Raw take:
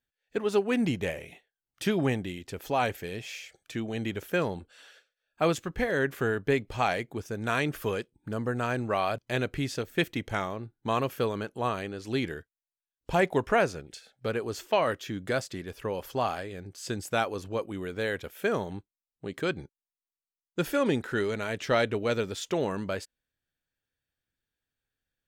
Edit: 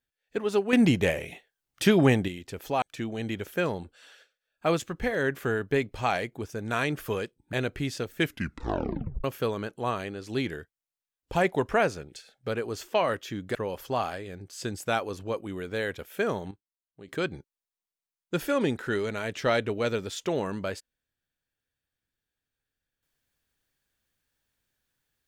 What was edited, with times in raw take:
0.73–2.28 s: gain +6.5 dB
2.82–3.58 s: delete
8.29–9.31 s: delete
9.95 s: tape stop 1.07 s
15.33–15.80 s: delete
18.76–19.33 s: gain -10.5 dB

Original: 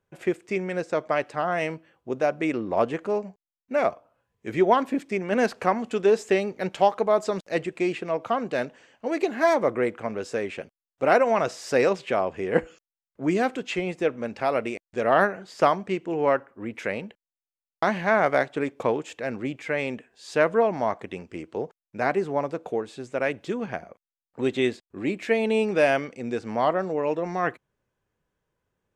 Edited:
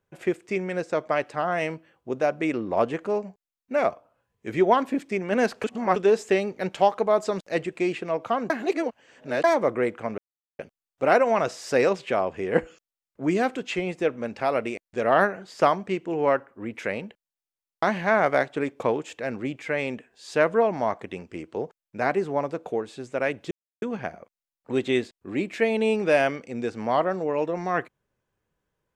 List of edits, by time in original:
5.64–5.96 s: reverse
8.50–9.44 s: reverse
10.18–10.59 s: mute
23.51 s: insert silence 0.31 s

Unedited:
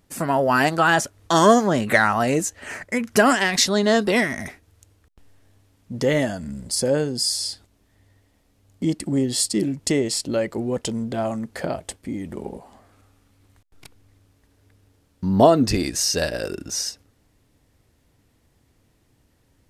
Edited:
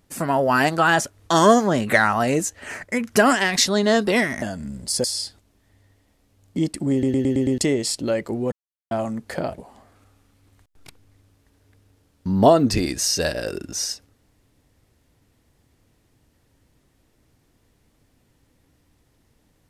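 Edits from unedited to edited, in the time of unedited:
4.42–6.25 s: delete
6.87–7.30 s: delete
9.18 s: stutter in place 0.11 s, 6 plays
10.78–11.17 s: mute
11.84–12.55 s: delete

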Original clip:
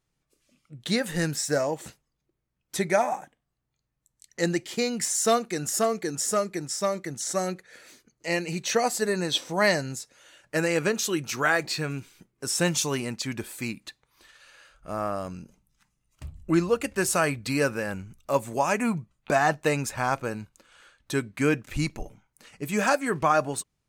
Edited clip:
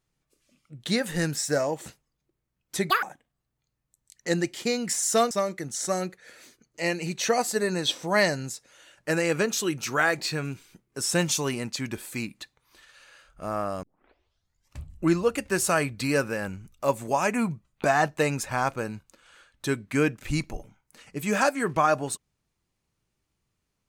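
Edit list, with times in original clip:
2.90–3.15 s: speed 194%
5.43–6.77 s: delete
15.29 s: tape start 0.99 s

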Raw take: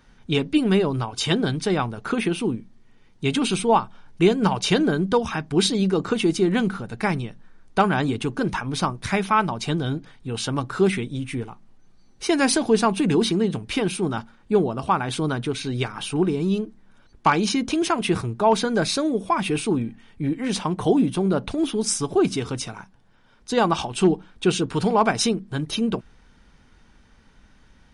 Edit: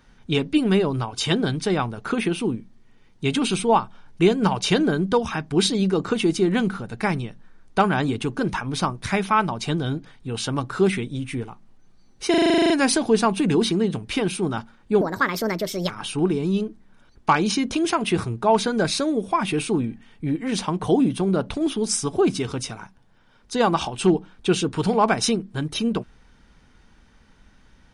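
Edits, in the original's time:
12.30 s: stutter 0.04 s, 11 plays
14.61–15.87 s: speed 142%

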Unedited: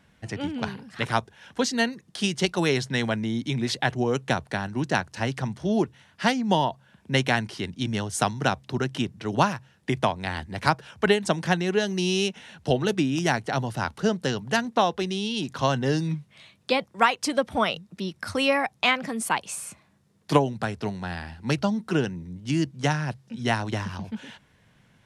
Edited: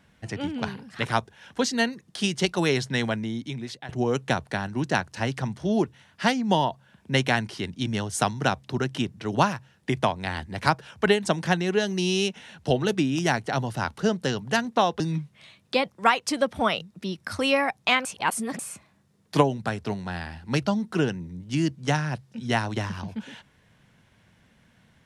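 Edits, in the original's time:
3.02–3.89 s: fade out, to -17.5 dB
15.00–15.96 s: delete
19.01–19.55 s: reverse

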